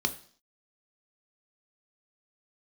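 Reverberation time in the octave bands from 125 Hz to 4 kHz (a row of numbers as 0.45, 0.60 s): 0.45, 0.50, 0.50, 0.50, 0.50, 0.60 s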